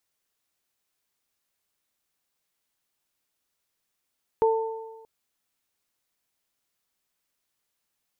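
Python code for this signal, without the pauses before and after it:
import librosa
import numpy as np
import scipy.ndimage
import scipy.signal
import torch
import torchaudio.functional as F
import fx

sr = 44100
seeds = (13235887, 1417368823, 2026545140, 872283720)

y = fx.additive(sr, length_s=0.63, hz=447.0, level_db=-17, upper_db=(-5,), decay_s=1.2, upper_decays_s=(1.22,))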